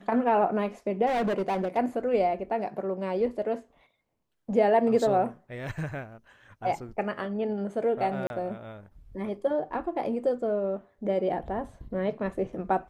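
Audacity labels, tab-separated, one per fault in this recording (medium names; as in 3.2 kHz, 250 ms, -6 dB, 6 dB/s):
1.060000	1.780000	clipped -24 dBFS
8.270000	8.300000	dropout 31 ms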